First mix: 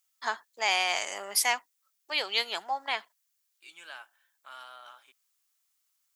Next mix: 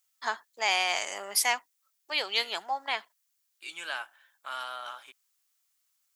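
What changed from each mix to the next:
second voice +9.5 dB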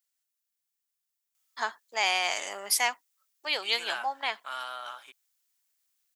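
first voice: entry +1.35 s

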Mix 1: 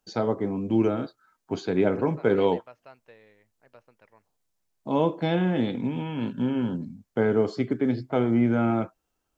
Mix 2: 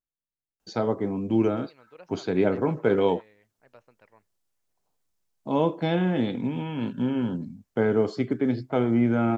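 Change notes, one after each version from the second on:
first voice: entry +0.60 s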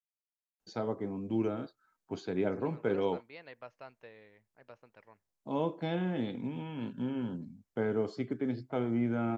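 first voice −9.0 dB
second voice: entry +0.95 s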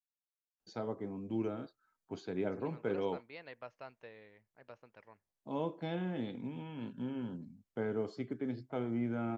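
first voice −4.5 dB

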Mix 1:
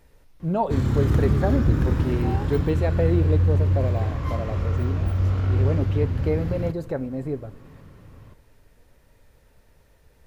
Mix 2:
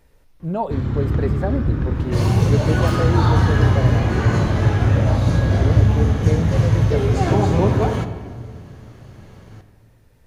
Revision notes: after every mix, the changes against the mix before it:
first sound: add high-frequency loss of the air 150 metres
second sound: unmuted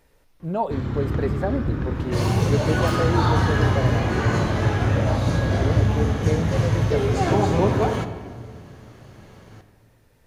master: add low-shelf EQ 180 Hz −7 dB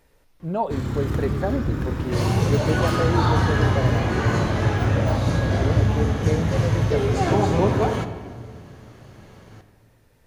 first sound: remove high-frequency loss of the air 150 metres

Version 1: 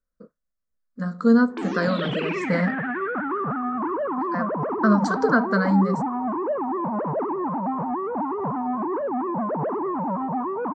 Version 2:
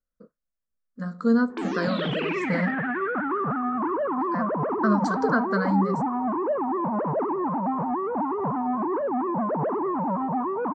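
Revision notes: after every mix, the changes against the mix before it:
speech −4.0 dB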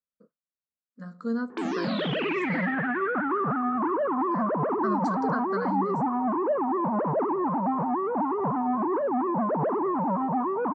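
speech −8.5 dB
master: add high-pass filter 100 Hz

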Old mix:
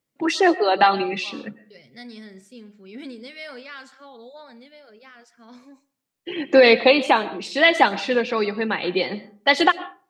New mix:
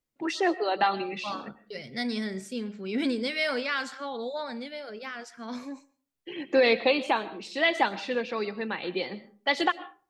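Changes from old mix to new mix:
first voice −8.5 dB
second voice +9.0 dB

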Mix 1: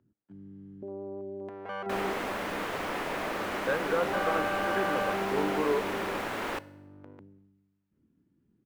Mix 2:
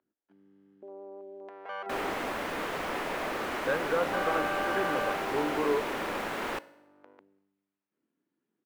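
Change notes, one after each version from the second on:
first sound: add band-pass filter 530–6,700 Hz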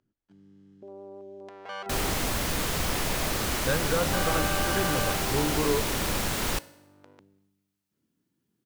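master: remove three-way crossover with the lows and the highs turned down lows −21 dB, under 250 Hz, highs −18 dB, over 2,600 Hz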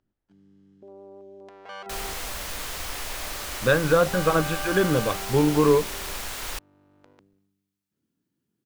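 speech +9.5 dB
second sound: add parametric band 180 Hz −14.5 dB 2.4 octaves
reverb: off

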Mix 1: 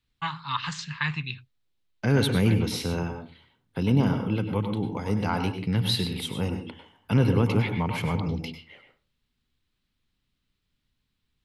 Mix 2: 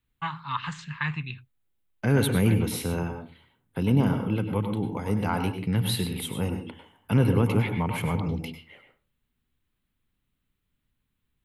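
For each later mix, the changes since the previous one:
second voice: add high-shelf EQ 5,100 Hz +10 dB
master: add parametric band 5,100 Hz −12.5 dB 1.1 octaves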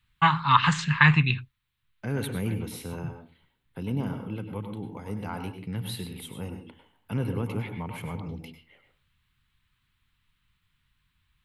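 first voice +11.5 dB
second voice −8.0 dB

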